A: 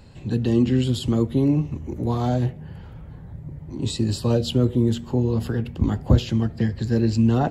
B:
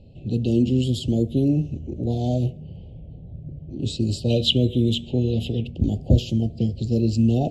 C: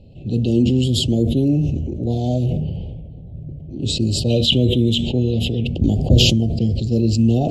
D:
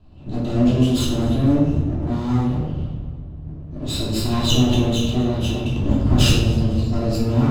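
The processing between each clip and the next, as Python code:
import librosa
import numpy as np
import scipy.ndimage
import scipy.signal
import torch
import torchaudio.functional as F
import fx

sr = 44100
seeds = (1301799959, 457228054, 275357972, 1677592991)

y1 = scipy.signal.sosfilt(scipy.signal.ellip(3, 1.0, 50, [670.0, 2800.0], 'bandstop', fs=sr, output='sos'), x)
y1 = fx.env_lowpass(y1, sr, base_hz=2200.0, full_db=-16.5)
y1 = fx.spec_box(y1, sr, start_s=4.29, length_s=1.37, low_hz=1600.0, high_hz=4100.0, gain_db=12)
y2 = fx.sustainer(y1, sr, db_per_s=28.0)
y2 = y2 * 10.0 ** (2.5 / 20.0)
y3 = fx.lower_of_two(y2, sr, delay_ms=0.76)
y3 = fx.echo_feedback(y3, sr, ms=249, feedback_pct=43, wet_db=-19.5)
y3 = fx.room_shoebox(y3, sr, seeds[0], volume_m3=310.0, walls='mixed', distance_m=3.0)
y3 = y3 * 10.0 ** (-10.0 / 20.0)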